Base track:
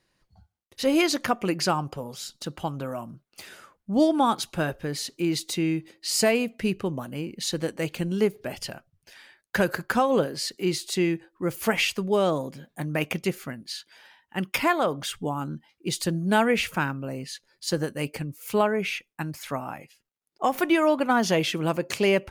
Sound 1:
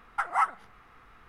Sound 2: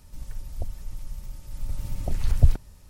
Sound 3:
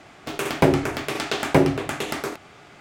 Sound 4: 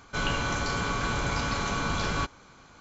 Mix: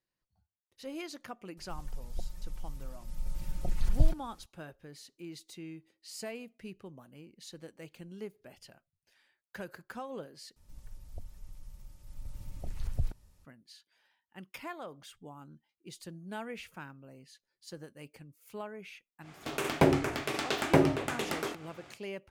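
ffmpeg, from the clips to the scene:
ffmpeg -i bed.wav -i cue0.wav -i cue1.wav -i cue2.wav -filter_complex "[2:a]asplit=2[link_01][link_02];[0:a]volume=-19.5dB[link_03];[link_01]aecho=1:1:5.6:0.71[link_04];[link_02]alimiter=limit=-7.5dB:level=0:latency=1:release=34[link_05];[link_03]asplit=2[link_06][link_07];[link_06]atrim=end=10.564[link_08];[link_05]atrim=end=2.89,asetpts=PTS-STARTPTS,volume=-12.5dB[link_09];[link_07]atrim=start=13.446[link_10];[link_04]atrim=end=2.89,asetpts=PTS-STARTPTS,volume=-8dB,afade=type=in:duration=0.004:curve=hsin,afade=type=out:start_time=2.886:duration=0.004:curve=hsin,adelay=1570[link_11];[3:a]atrim=end=2.8,asetpts=PTS-STARTPTS,volume=-6.5dB,afade=type=in:duration=0.1,afade=type=out:start_time=2.7:duration=0.1,adelay=19190[link_12];[link_08][link_09]acrossfade=duration=0.004:curve1=hsin:curve2=hsin[link_13];[link_13][link_10]acrossfade=duration=0.004:curve1=hsin:curve2=hsin[link_14];[link_14][link_11][link_12]amix=inputs=3:normalize=0" out.wav

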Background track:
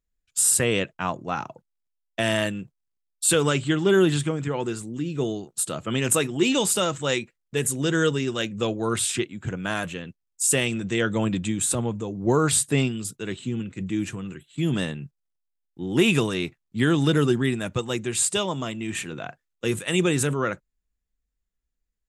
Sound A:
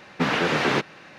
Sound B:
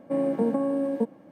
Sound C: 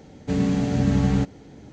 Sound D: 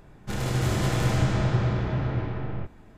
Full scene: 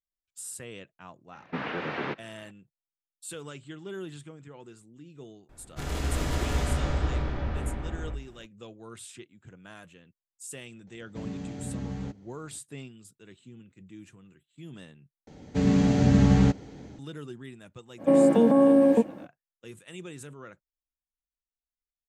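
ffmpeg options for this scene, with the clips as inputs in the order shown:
ffmpeg -i bed.wav -i cue0.wav -i cue1.wav -i cue2.wav -i cue3.wav -filter_complex "[3:a]asplit=2[link_01][link_02];[0:a]volume=-20dB[link_03];[1:a]lowpass=2800[link_04];[4:a]afreqshift=-57[link_05];[link_02]dynaudnorm=framelen=260:gausssize=3:maxgain=3.5dB[link_06];[2:a]alimiter=level_in=19dB:limit=-1dB:release=50:level=0:latency=1[link_07];[link_03]asplit=2[link_08][link_09];[link_08]atrim=end=15.274[link_10];[link_06]atrim=end=1.72,asetpts=PTS-STARTPTS,volume=-2.5dB[link_11];[link_09]atrim=start=16.986[link_12];[link_04]atrim=end=1.18,asetpts=PTS-STARTPTS,volume=-10dB,afade=type=in:duration=0.004:curve=hsin,afade=type=out:start_time=1.176:duration=0.004:curve=hsin,adelay=1330[link_13];[link_05]atrim=end=2.97,asetpts=PTS-STARTPTS,volume=-3.5dB,afade=type=in:duration=0.004:curve=hsin,afade=type=out:start_time=2.966:duration=0.004:curve=hsin,adelay=242109S[link_14];[link_01]atrim=end=1.72,asetpts=PTS-STARTPTS,volume=-15dB,afade=type=in:duration=0.004:curve=hsin,afade=type=out:start_time=1.716:duration=0.004:curve=hsin,adelay=10870[link_15];[link_07]atrim=end=1.31,asetpts=PTS-STARTPTS,volume=-10dB,afade=type=in:duration=0.05,afade=type=out:start_time=1.26:duration=0.05,adelay=17970[link_16];[link_10][link_11]acrossfade=duration=0.004:curve1=hsin:curve2=hsin[link_17];[link_17][link_12]acrossfade=duration=0.004:curve1=hsin:curve2=hsin[link_18];[link_18][link_13][link_14][link_15][link_16]amix=inputs=5:normalize=0" out.wav

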